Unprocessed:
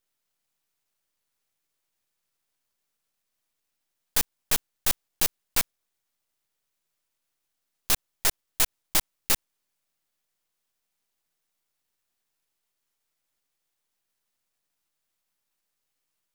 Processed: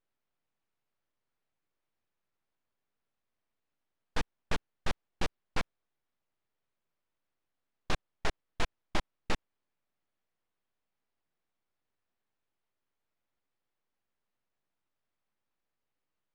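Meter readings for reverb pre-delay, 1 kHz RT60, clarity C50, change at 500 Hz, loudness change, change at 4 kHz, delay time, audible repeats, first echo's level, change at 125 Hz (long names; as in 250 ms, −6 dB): no reverb audible, no reverb audible, no reverb audible, −0.5 dB, −13.0 dB, −11.5 dB, no echo audible, no echo audible, no echo audible, +0.5 dB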